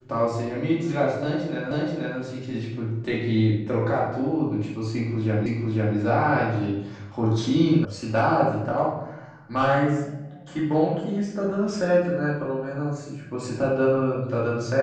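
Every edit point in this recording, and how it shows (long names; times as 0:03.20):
0:01.71: the same again, the last 0.48 s
0:05.46: the same again, the last 0.5 s
0:07.85: cut off before it has died away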